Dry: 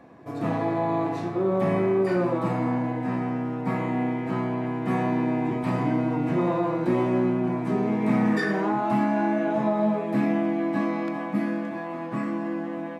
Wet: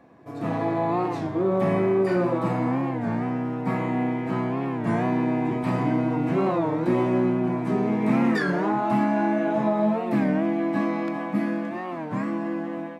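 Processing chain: AGC gain up to 4.5 dB; record warp 33 1/3 rpm, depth 160 cents; gain -3.5 dB

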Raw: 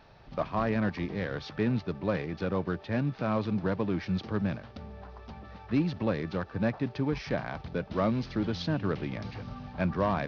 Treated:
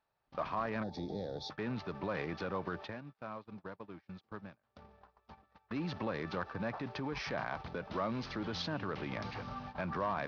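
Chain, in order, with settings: 2.89–5.47 compressor 20:1, threshold -39 dBFS, peak gain reduction 16 dB; gate -42 dBFS, range -28 dB; limiter -27 dBFS, peak gain reduction 10 dB; low shelf 270 Hz -7.5 dB; 0.83–1.5 spectral gain 890–3300 Hz -22 dB; bell 1100 Hz +5.5 dB 1.2 oct

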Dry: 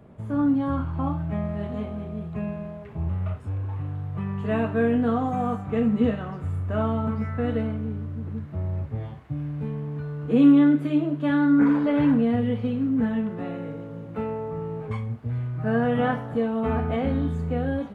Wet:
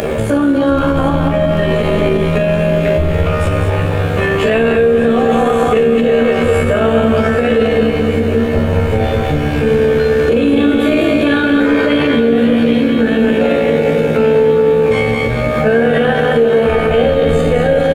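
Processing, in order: high shelf 2300 Hz +10.5 dB; notch 2000 Hz, Q 10; resonator 77 Hz, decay 0.85 s, harmonics all, mix 90%; feedback echo 0.207 s, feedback 48%, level -6 dB; AM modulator 71 Hz, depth 35%; doubler 18 ms -5 dB; upward compressor, threshold -20 dBFS; graphic EQ 125/250/500/1000/2000 Hz -9/-5/+11/-8/+7 dB; maximiser +26 dB; lo-fi delay 0.786 s, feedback 80%, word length 7-bit, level -13 dB; gain -3.5 dB

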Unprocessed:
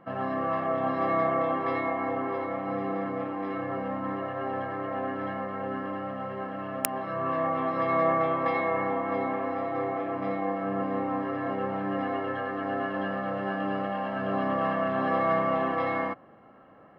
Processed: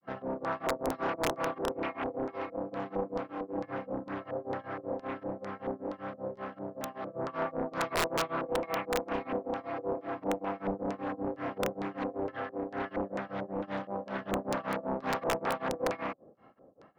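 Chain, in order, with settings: LFO low-pass square 2.2 Hz 500–5000 Hz; grains 0.222 s, grains 5.2/s, spray 14 ms, pitch spread up and down by 0 st; wrapped overs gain 18 dB; Doppler distortion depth 0.77 ms; gain -3 dB

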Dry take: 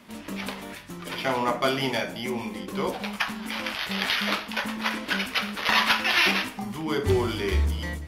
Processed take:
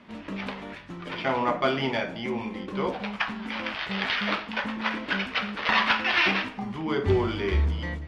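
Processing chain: LPF 3200 Hz 12 dB/oct

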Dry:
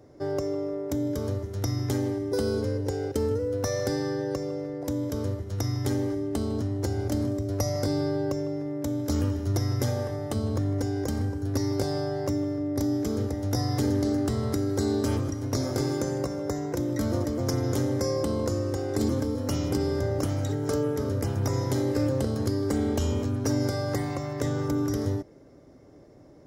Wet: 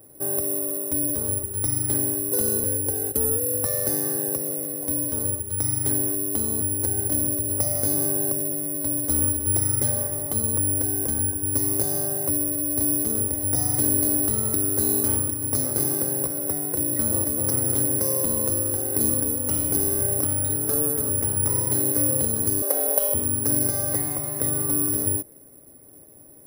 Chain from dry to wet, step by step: 22.62–23.14 resonant high-pass 590 Hz, resonance Q 4.9; careless resampling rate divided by 4×, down filtered, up zero stuff; gain -2.5 dB

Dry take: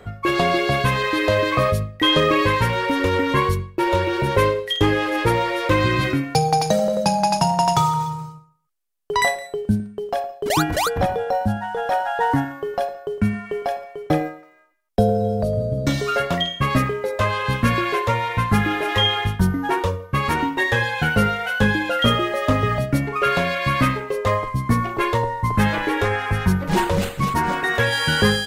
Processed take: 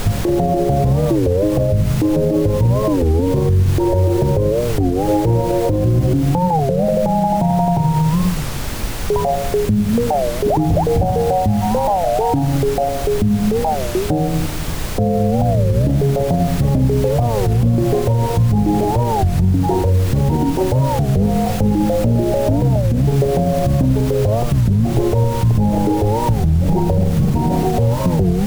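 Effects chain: steep low-pass 860 Hz 72 dB/oct; on a send at -19 dB: reverb RT60 1.1 s, pre-delay 3 ms; on the sum: added noise pink -40 dBFS; compressor, threshold -25 dBFS, peak gain reduction 13 dB; low shelf 140 Hz +9.5 dB; maximiser +19.5 dB; record warp 33 1/3 rpm, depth 250 cents; gain -6.5 dB

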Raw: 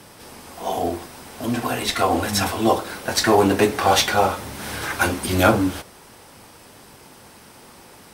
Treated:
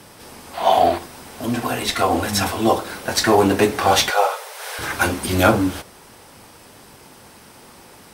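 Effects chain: 0.54–0.98 spectral gain 550–4800 Hz +10 dB; 4.1–4.79 brick-wall FIR high-pass 410 Hz; gain +1 dB

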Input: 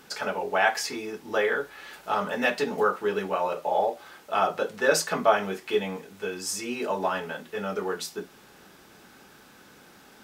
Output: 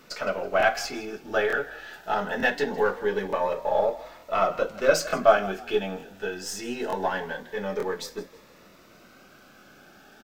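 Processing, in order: half-wave gain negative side -3 dB; fifteen-band EQ 630 Hz +6 dB, 1600 Hz +5 dB, 10000 Hz -9 dB; on a send: frequency-shifting echo 0.162 s, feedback 32%, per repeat +42 Hz, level -18 dB; on the sum: crackling interface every 0.90 s, samples 1024, repeat, from 0.58; cascading phaser rising 0.23 Hz; gain +1 dB

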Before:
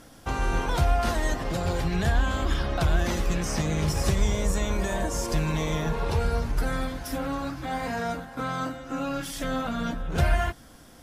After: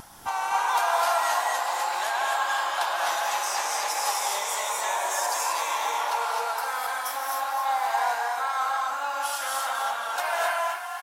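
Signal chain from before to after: high shelf 6600 Hz +9.5 dB; upward compressor, threshold -42 dBFS; ladder high-pass 790 Hz, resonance 65%; wow and flutter 59 cents; on a send: frequency-shifting echo 0.257 s, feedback 50%, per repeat +35 Hz, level -9 dB; on the sum: non-linear reverb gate 0.29 s rising, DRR -1 dB; gain +8.5 dB

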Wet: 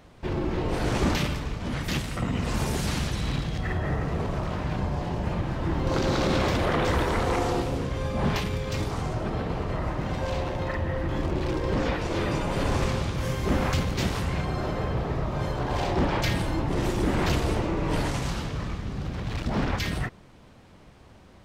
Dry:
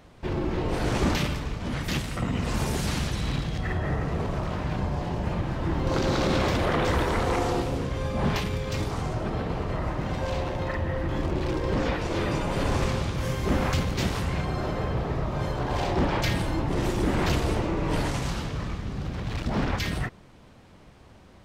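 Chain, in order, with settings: 3.53–4.19 crackle 340/s -55 dBFS

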